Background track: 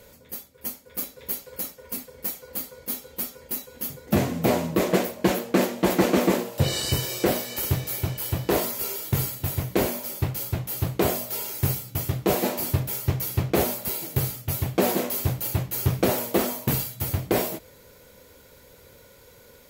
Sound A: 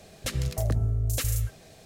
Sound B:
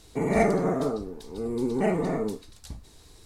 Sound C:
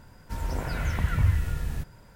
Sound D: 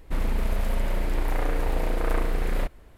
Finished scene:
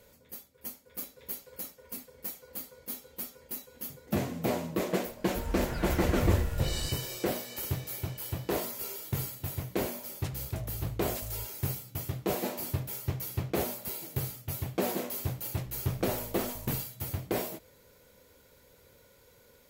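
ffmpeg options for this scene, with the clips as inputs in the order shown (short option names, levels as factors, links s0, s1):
-filter_complex "[1:a]asplit=2[s0][s1];[0:a]volume=0.376[s2];[s1]aeval=exprs='if(lt(val(0),0),0.251*val(0),val(0))':c=same[s3];[3:a]atrim=end=2.15,asetpts=PTS-STARTPTS,volume=0.596,afade=t=in:d=0.004:c=hsin,afade=t=out:st=2.146:d=0.004:c=hsin,adelay=222705S[s4];[s0]atrim=end=1.85,asetpts=PTS-STARTPTS,volume=0.2,afade=t=in:d=0.004:c=hsin,afade=t=out:st=1.846:d=0.004:c=hsin,adelay=9980[s5];[s3]atrim=end=1.85,asetpts=PTS-STARTPTS,volume=0.15,afade=t=in:d=0.004:c=hsin,afade=t=out:st=1.846:d=0.004:c=hsin,adelay=15310[s6];[s2][s4][s5][s6]amix=inputs=4:normalize=0"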